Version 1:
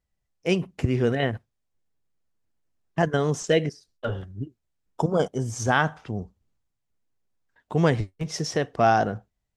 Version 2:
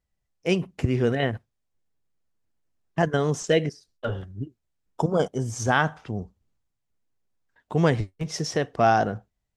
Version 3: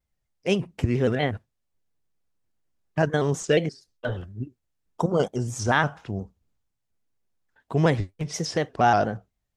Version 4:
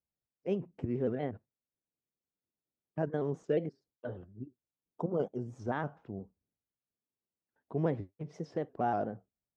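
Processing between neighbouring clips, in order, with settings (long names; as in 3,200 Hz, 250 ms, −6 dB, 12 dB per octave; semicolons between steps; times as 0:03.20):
no processing that can be heard
pitch modulation by a square or saw wave square 4.2 Hz, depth 100 cents
resonant band-pass 330 Hz, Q 0.7; level −8 dB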